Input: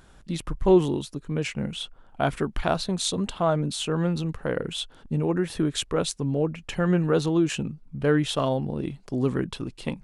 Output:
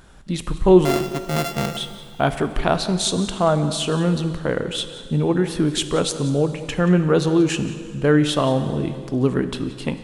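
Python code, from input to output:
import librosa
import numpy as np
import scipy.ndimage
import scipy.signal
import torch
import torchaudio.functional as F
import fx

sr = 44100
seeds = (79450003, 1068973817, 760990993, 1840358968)

p1 = fx.sample_sort(x, sr, block=64, at=(0.85, 1.77))
p2 = p1 + fx.echo_single(p1, sr, ms=180, db=-17.0, dry=0)
p3 = fx.rev_plate(p2, sr, seeds[0], rt60_s=2.3, hf_ratio=0.95, predelay_ms=0, drr_db=10.5)
y = F.gain(torch.from_numpy(p3), 5.0).numpy()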